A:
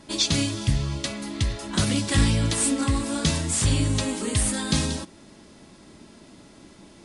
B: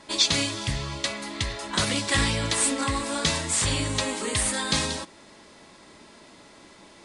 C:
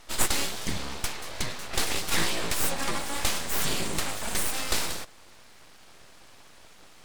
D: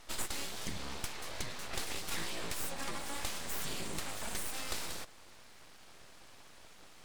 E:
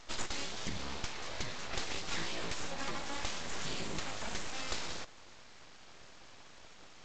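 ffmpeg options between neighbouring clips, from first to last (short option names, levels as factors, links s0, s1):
-af "equalizer=f=500:t=o:w=1:g=7,equalizer=f=1000:t=o:w=1:g=9,equalizer=f=2000:t=o:w=1:g=9,equalizer=f=4000:t=o:w=1:g=7,equalizer=f=8000:t=o:w=1:g=7,volume=0.422"
-af "aeval=exprs='abs(val(0))':c=same"
-af "acompressor=threshold=0.0282:ratio=3,volume=0.631"
-af "volume=1.19" -ar 16000 -c:a g722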